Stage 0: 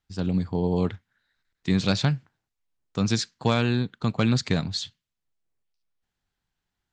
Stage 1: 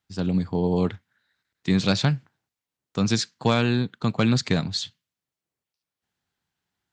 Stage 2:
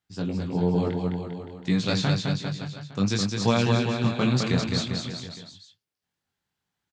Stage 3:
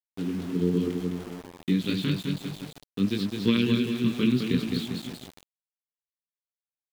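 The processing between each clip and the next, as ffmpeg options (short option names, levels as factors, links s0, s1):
-af "highpass=96,volume=1.26"
-af "flanger=delay=17:depth=6.5:speed=0.57,aecho=1:1:210|399|569.1|722.2|860:0.631|0.398|0.251|0.158|0.1"
-af "aeval=exprs='0.422*(cos(1*acos(clip(val(0)/0.422,-1,1)))-cos(1*PI/2))+0.0596*(cos(3*acos(clip(val(0)/0.422,-1,1)))-cos(3*PI/2))+0.00596*(cos(7*acos(clip(val(0)/0.422,-1,1)))-cos(7*PI/2))':c=same,firequalizer=gain_entry='entry(100,0);entry(260,13);entry(420,8);entry(730,-28);entry(1000,-5);entry(3100,10);entry(6500,-16)':delay=0.05:min_phase=1,aeval=exprs='val(0)*gte(abs(val(0)),0.02)':c=same,volume=0.631"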